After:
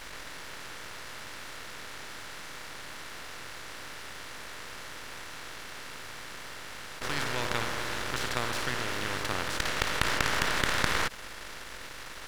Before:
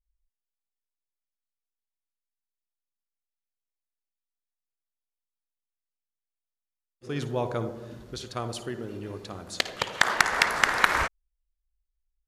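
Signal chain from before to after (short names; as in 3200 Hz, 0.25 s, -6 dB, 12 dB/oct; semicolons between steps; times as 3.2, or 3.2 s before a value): per-bin compression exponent 0.2; half-wave rectifier; gain -8.5 dB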